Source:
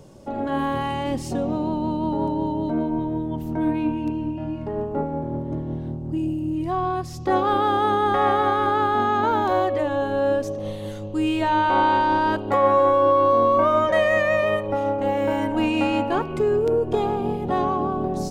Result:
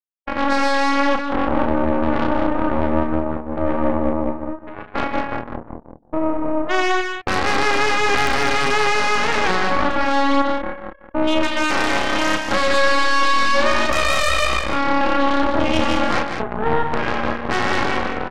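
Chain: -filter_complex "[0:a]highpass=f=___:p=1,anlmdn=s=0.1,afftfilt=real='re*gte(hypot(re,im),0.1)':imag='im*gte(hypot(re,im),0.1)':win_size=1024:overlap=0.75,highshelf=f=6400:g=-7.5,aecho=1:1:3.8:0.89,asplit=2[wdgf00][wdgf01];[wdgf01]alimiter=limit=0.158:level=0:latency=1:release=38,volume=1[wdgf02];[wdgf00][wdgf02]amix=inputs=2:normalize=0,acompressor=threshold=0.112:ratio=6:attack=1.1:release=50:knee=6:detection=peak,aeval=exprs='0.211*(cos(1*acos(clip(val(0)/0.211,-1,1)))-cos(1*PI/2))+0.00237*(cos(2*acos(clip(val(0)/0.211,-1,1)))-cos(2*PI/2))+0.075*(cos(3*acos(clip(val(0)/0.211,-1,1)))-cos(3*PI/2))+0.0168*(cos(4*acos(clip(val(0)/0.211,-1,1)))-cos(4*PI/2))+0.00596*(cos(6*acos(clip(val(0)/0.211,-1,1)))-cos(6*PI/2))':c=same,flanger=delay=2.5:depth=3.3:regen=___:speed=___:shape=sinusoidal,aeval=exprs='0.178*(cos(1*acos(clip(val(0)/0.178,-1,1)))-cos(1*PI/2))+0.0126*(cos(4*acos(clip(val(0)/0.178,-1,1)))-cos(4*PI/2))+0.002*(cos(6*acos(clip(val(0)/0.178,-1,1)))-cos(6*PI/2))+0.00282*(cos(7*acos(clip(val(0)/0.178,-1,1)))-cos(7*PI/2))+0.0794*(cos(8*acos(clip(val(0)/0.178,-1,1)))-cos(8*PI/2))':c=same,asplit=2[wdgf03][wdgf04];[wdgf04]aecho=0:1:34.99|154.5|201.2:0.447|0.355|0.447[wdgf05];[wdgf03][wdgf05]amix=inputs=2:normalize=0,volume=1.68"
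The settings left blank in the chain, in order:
270, -82, 0.61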